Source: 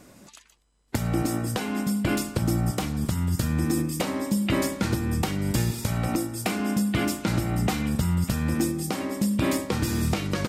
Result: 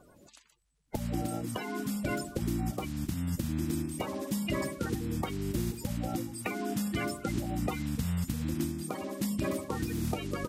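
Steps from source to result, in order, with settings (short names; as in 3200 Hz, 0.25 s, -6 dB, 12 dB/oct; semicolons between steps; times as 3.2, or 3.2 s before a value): bin magnitudes rounded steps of 30 dB; gain -7 dB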